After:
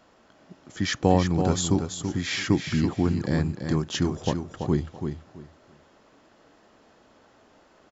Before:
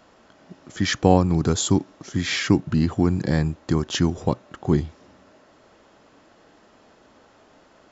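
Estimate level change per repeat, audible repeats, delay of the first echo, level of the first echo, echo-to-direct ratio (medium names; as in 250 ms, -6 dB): -13.5 dB, 3, 333 ms, -7.0 dB, -7.0 dB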